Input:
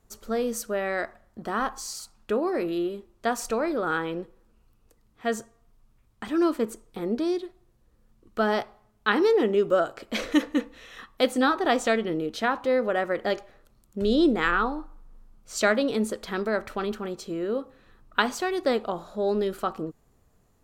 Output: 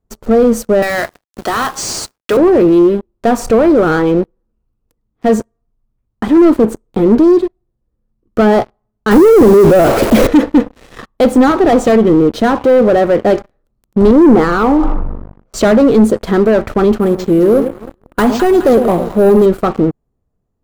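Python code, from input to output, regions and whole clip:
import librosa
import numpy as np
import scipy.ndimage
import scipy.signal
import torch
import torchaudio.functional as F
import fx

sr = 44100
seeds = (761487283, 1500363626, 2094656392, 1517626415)

y = fx.chain(x, sr, fx.weighting(curve='ITU-R 468'),
    fx.quant_companded(bits=4),
    fx.band_squash(depth_pct=40), at=(0.82, 2.37))
y = fx.chain(y, sr, fx.crossing_spikes(level_db=-17.0),
    fx.tilt_shelf(db=5.0, hz=1300.0),
    fx.env_flatten(amount_pct=50), at=(9.11, 10.27))
y = fx.chain(y, sr, fx.lowpass(hz=1400.0, slope=12),
    fx.low_shelf(hz=160.0, db=-10.0),
    fx.sustainer(db_per_s=32.0), at=(14.11, 15.54))
y = fx.chain(y, sr, fx.high_shelf(hz=9600.0, db=4.0),
    fx.echo_alternate(ms=105, hz=810.0, feedback_pct=63, wet_db=-11),
    fx.resample_bad(factor=4, down='none', up='hold'), at=(17.0, 19.46))
y = fx.leveller(y, sr, passes=5)
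y = fx.tilt_shelf(y, sr, db=8.0, hz=1100.0)
y = y * librosa.db_to_amplitude(-2.5)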